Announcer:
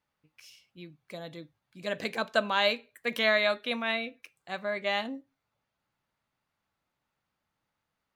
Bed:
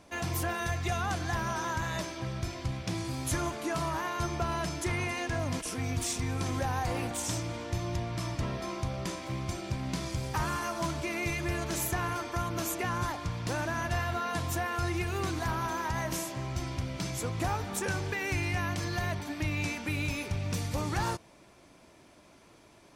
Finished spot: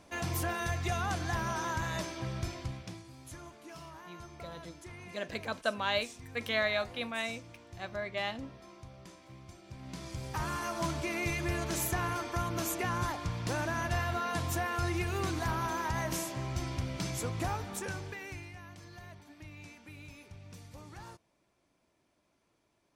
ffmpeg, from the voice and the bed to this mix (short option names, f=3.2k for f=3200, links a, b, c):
-filter_complex "[0:a]adelay=3300,volume=-5.5dB[a];[1:a]volume=14dB,afade=t=out:st=2.45:d=0.58:silence=0.177828,afade=t=in:st=9.65:d=1.2:silence=0.16788,afade=t=out:st=17.14:d=1.39:silence=0.149624[b];[a][b]amix=inputs=2:normalize=0"